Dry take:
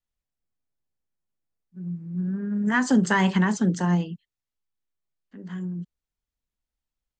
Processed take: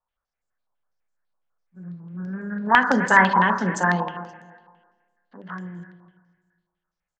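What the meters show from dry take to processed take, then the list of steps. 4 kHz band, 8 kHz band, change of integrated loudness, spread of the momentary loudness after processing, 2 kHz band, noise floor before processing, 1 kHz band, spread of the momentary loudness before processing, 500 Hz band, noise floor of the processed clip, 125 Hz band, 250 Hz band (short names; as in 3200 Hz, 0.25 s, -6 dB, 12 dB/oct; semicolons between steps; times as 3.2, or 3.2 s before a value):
+2.0 dB, -2.0 dB, +5.0 dB, 21 LU, +9.0 dB, under -85 dBFS, +11.0 dB, 17 LU, +4.0 dB, under -85 dBFS, -4.0 dB, -3.5 dB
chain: band shelf 950 Hz +10.5 dB 2.3 oct; notch 1900 Hz, Q 19; on a send: feedback echo 0.262 s, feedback 27%, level -15 dB; on the sum: spring tank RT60 1.6 s, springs 31/59 ms, chirp 40 ms, DRR 9.5 dB; stepped low-pass 12 Hz 1000–7300 Hz; gain -4 dB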